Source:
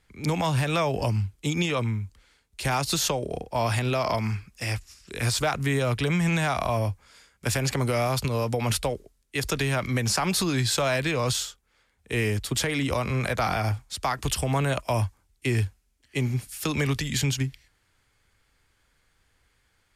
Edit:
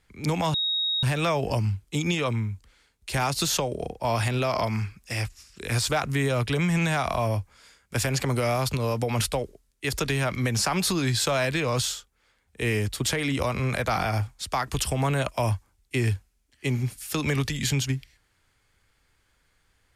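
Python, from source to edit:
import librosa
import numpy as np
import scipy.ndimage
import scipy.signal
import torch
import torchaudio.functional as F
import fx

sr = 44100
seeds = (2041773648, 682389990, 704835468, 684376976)

y = fx.edit(x, sr, fx.insert_tone(at_s=0.54, length_s=0.49, hz=3770.0, db=-23.0), tone=tone)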